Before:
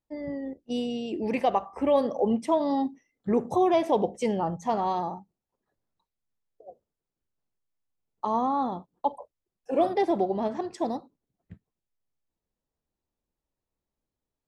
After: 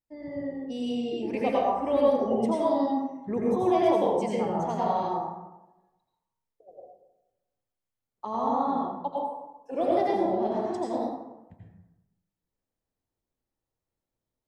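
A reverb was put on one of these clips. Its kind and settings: plate-style reverb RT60 1 s, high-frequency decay 0.5×, pre-delay 75 ms, DRR -5 dB; gain -6.5 dB

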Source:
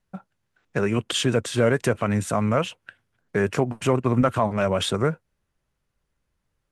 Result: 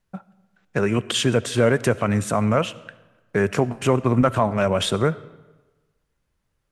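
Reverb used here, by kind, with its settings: digital reverb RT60 1.2 s, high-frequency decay 0.75×, pre-delay 30 ms, DRR 18.5 dB; gain +2 dB

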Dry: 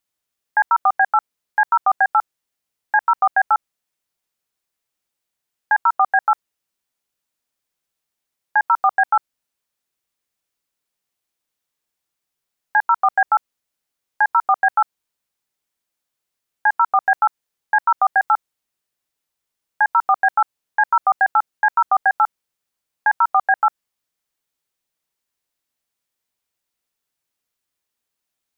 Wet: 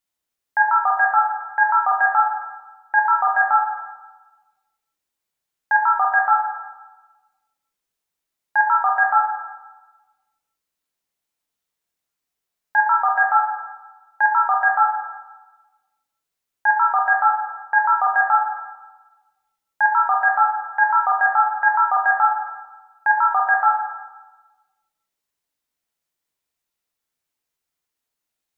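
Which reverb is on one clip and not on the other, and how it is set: plate-style reverb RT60 1.2 s, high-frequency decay 0.55×, DRR 0 dB; gain -4 dB

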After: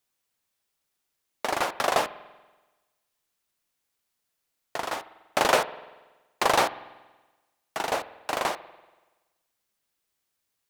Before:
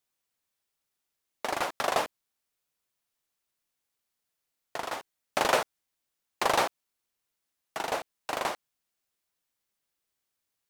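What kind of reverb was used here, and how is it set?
spring tank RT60 1.2 s, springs 47 ms, chirp 55 ms, DRR 15.5 dB; gain +3.5 dB

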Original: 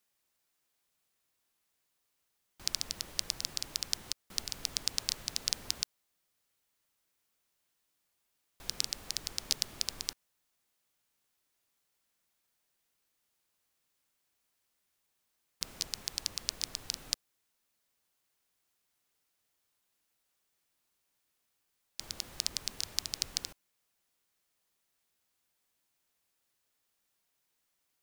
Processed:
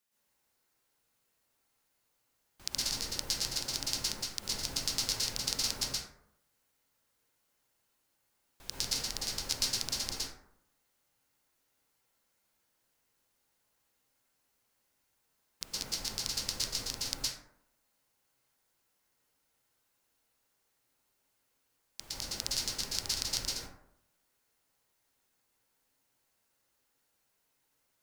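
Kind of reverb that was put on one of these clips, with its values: plate-style reverb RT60 0.74 s, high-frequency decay 0.4×, pre-delay 0.105 s, DRR -8 dB; gain -4 dB

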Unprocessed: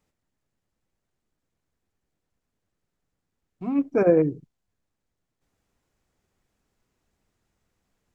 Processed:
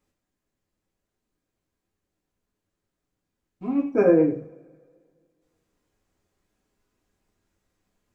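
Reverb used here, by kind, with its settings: two-slope reverb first 0.44 s, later 2 s, from -25 dB, DRR -1 dB; gain -3.5 dB

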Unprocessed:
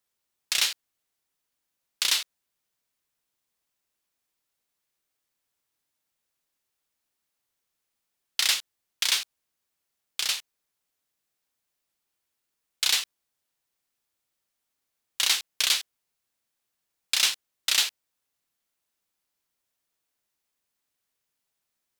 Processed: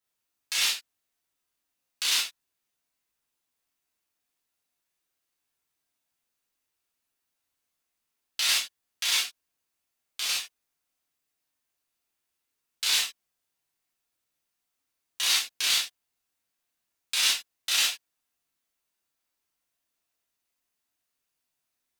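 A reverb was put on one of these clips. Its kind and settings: non-linear reverb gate 90 ms flat, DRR -7 dB; gain -8 dB

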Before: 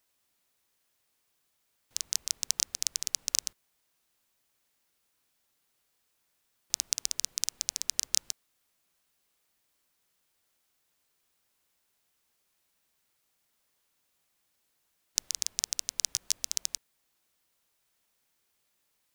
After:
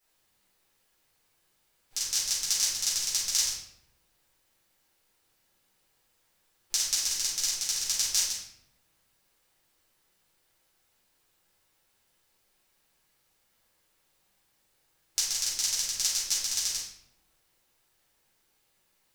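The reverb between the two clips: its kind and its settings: shoebox room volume 200 m³, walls mixed, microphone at 4.2 m; gain -6.5 dB

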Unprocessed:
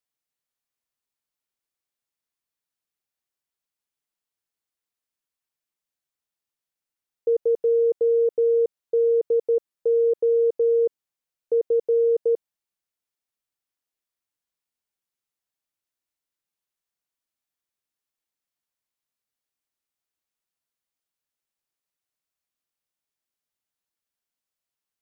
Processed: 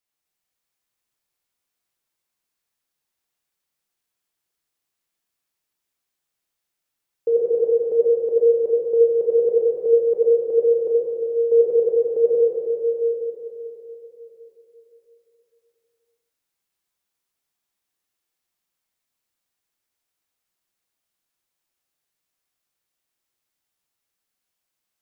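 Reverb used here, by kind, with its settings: plate-style reverb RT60 3.9 s, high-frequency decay 1×, DRR -5.5 dB; gain +1 dB

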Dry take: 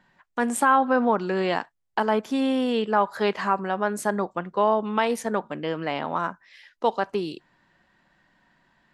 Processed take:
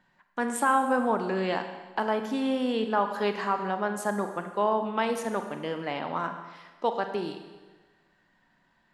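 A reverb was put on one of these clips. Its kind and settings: Schroeder reverb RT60 1.3 s, combs from 32 ms, DRR 7 dB; gain -4.5 dB

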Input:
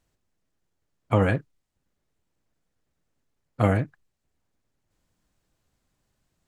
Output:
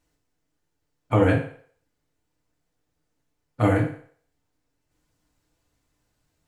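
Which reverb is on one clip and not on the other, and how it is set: FDN reverb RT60 0.53 s, low-frequency decay 0.7×, high-frequency decay 0.95×, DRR -1.5 dB; gain -1.5 dB

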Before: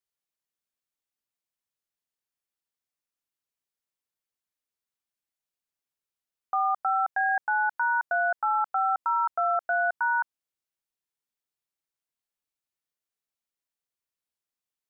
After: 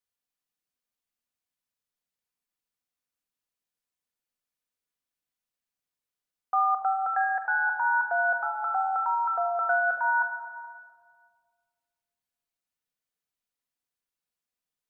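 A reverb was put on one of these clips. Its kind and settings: shoebox room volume 3000 m³, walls mixed, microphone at 1.9 m; gain -2 dB

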